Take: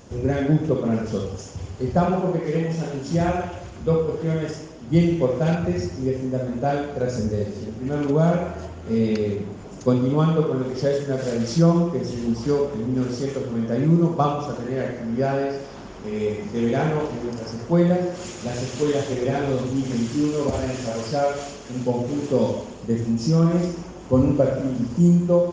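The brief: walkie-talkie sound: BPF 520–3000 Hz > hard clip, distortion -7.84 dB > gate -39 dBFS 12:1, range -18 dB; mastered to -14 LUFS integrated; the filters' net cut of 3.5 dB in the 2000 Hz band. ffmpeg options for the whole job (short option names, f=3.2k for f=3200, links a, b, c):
-af "highpass=520,lowpass=3k,equalizer=f=2k:t=o:g=-4,asoftclip=type=hard:threshold=-27dB,agate=range=-18dB:threshold=-39dB:ratio=12,volume=19dB"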